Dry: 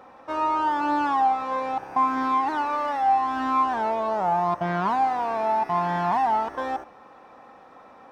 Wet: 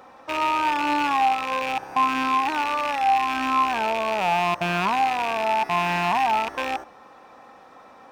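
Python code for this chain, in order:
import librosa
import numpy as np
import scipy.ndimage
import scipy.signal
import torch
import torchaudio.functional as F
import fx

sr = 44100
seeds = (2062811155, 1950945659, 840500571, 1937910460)

y = fx.rattle_buzz(x, sr, strikes_db=-43.0, level_db=-21.0)
y = fx.high_shelf(y, sr, hz=3000.0, db=8.5)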